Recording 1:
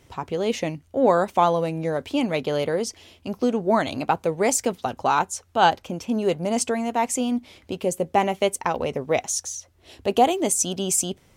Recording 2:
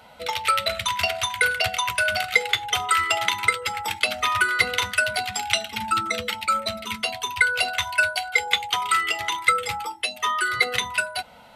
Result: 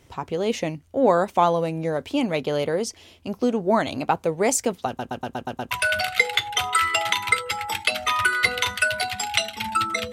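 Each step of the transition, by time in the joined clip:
recording 1
4.87 stutter in place 0.12 s, 7 plays
5.71 switch to recording 2 from 1.87 s

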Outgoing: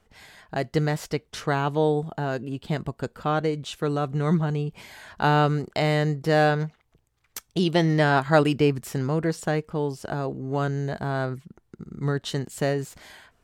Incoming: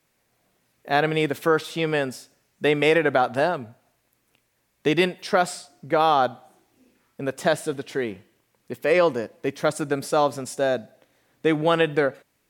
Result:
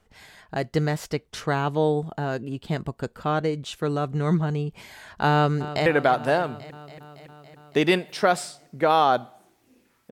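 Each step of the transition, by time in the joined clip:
outgoing
5.32–5.86 echo throw 0.28 s, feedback 75%, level -13.5 dB
5.86 switch to incoming from 2.96 s

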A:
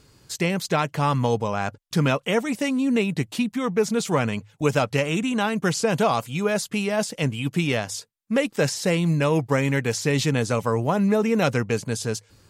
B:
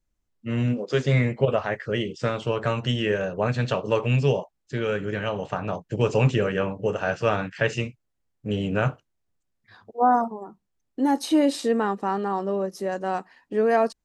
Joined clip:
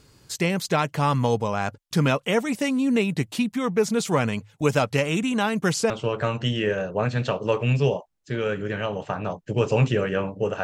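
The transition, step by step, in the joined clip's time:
A
5.9 switch to B from 2.33 s

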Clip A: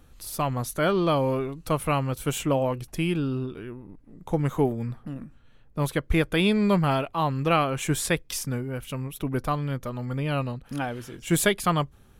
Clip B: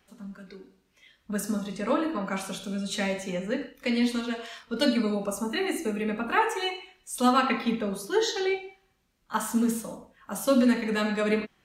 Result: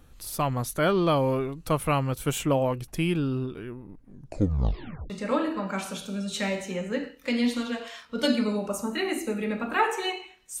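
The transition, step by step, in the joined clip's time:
clip A
4 tape stop 1.10 s
5.1 switch to clip B from 1.68 s

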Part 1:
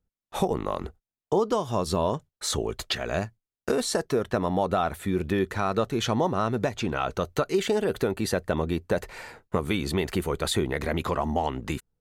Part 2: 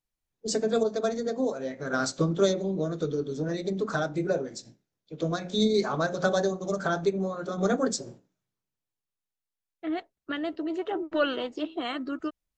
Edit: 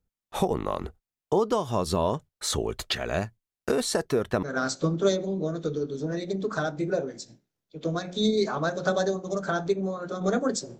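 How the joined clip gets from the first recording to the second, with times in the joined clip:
part 1
4.43 switch to part 2 from 1.8 s

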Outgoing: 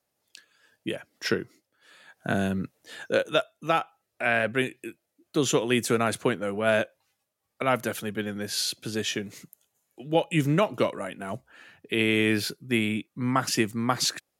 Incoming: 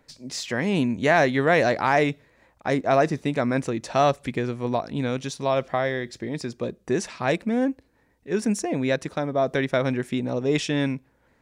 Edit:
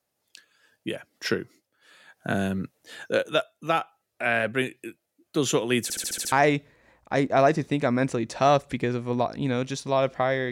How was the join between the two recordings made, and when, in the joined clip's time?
outgoing
5.83 stutter in place 0.07 s, 7 plays
6.32 switch to incoming from 1.86 s

